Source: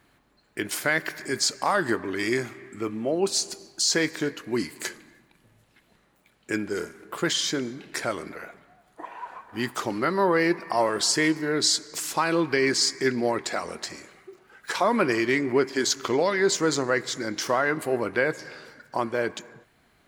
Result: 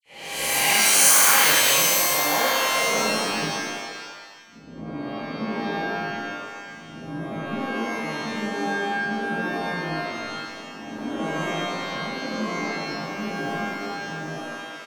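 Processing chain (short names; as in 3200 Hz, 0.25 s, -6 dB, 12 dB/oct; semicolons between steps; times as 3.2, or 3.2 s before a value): spectral swells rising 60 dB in 2.18 s; gate -36 dBFS, range -15 dB; low-pass opened by the level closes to 1200 Hz, open at -19.5 dBFS; bell 270 Hz -10.5 dB 0.77 oct; low-pass sweep 7400 Hz -> 170 Hz, 2.61–4.14; dispersion lows, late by 80 ms, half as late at 1700 Hz; frequency-shifting echo 0.243 s, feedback 36%, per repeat +61 Hz, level -6.5 dB; speed mistake 33 rpm record played at 45 rpm; shimmer reverb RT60 1.3 s, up +12 st, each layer -2 dB, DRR -7.5 dB; gain -9.5 dB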